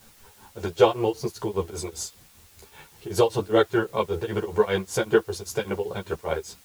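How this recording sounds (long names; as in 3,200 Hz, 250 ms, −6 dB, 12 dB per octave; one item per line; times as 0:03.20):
tremolo triangle 5.1 Hz, depth 100%
a quantiser's noise floor 10 bits, dither triangular
a shimmering, thickened sound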